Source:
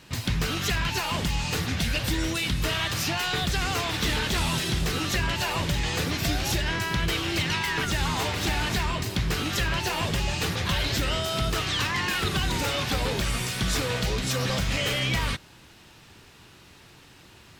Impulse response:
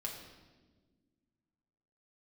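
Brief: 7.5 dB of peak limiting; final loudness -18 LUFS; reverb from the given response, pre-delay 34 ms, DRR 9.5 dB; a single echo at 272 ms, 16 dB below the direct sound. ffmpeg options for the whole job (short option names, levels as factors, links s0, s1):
-filter_complex "[0:a]alimiter=limit=0.0708:level=0:latency=1,aecho=1:1:272:0.158,asplit=2[s0][s1];[1:a]atrim=start_sample=2205,adelay=34[s2];[s1][s2]afir=irnorm=-1:irlink=0,volume=0.355[s3];[s0][s3]amix=inputs=2:normalize=0,volume=4.22"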